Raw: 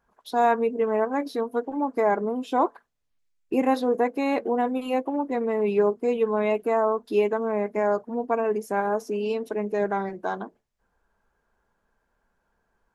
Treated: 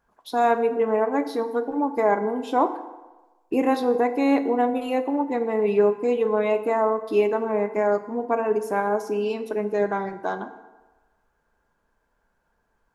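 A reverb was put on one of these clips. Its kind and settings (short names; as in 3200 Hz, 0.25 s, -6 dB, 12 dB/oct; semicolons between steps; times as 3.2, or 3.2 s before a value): FDN reverb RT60 1.2 s, low-frequency decay 0.8×, high-frequency decay 0.65×, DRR 8.5 dB; gain +1 dB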